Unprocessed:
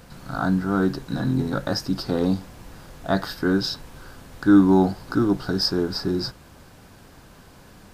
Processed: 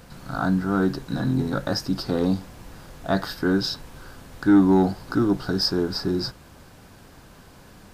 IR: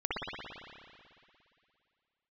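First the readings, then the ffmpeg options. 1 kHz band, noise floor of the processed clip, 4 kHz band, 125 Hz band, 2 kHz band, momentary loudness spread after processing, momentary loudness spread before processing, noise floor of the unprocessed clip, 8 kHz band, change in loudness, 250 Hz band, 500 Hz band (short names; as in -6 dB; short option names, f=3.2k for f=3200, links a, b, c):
-0.5 dB, -48 dBFS, 0.0 dB, -0.5 dB, -0.5 dB, 10 LU, 11 LU, -48 dBFS, n/a, -0.5 dB, -1.0 dB, -0.5 dB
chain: -af "asoftclip=type=tanh:threshold=-7.5dB"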